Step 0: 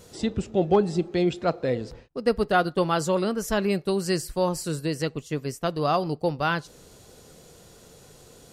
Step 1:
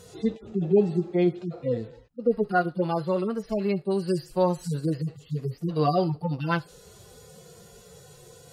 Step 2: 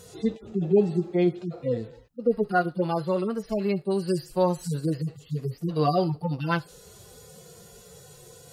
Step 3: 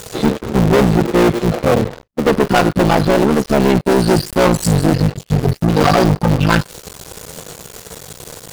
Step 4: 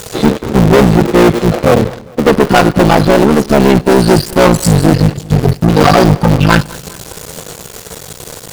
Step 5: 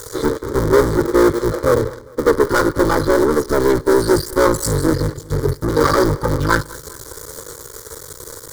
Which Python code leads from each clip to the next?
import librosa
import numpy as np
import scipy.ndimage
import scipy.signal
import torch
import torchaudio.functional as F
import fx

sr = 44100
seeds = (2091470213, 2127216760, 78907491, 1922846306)

y1 = fx.hpss_only(x, sr, part='harmonic')
y1 = fx.rider(y1, sr, range_db=10, speed_s=2.0)
y2 = fx.high_shelf(y1, sr, hz=7600.0, db=5.5)
y3 = fx.cycle_switch(y2, sr, every=3, mode='muted')
y3 = fx.leveller(y3, sr, passes=5)
y3 = y3 * 10.0 ** (3.5 / 20.0)
y4 = fx.echo_feedback(y3, sr, ms=202, feedback_pct=50, wet_db=-22.0)
y4 = y4 * 10.0 ** (5.0 / 20.0)
y5 = fx.fixed_phaser(y4, sr, hz=720.0, stages=6)
y5 = y5 * 10.0 ** (-3.5 / 20.0)